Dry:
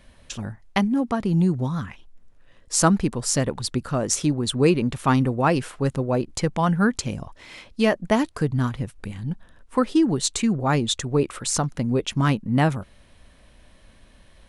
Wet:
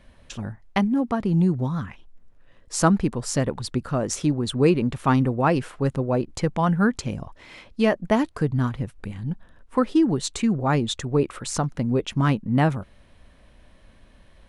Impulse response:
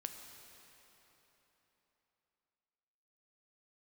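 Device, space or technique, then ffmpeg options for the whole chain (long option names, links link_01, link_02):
behind a face mask: -af "highshelf=frequency=3500:gain=-7.5"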